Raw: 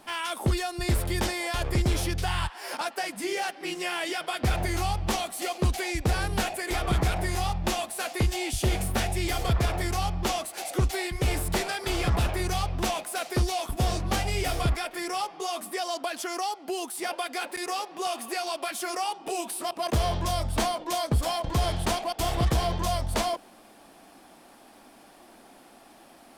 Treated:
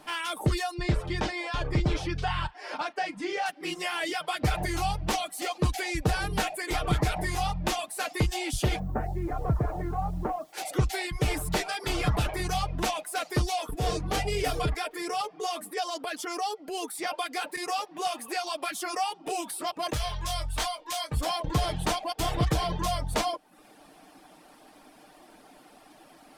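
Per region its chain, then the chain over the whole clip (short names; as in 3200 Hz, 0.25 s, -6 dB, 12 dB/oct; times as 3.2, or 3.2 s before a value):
0.74–3.46 air absorption 110 m + doubler 37 ms -13 dB
8.79–10.53 Bessel low-pass 990 Hz, order 6 + requantised 10-bit, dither triangular
13.53–16.89 bell 440 Hz +12 dB 0.21 oct + transient shaper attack -7 dB, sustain -1 dB
19.93–21.17 bell 270 Hz -15 dB 2.7 oct + doubler 21 ms -6.5 dB
whole clip: reverb removal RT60 0.55 s; high shelf 8800 Hz -4 dB; comb 6.6 ms, depth 40%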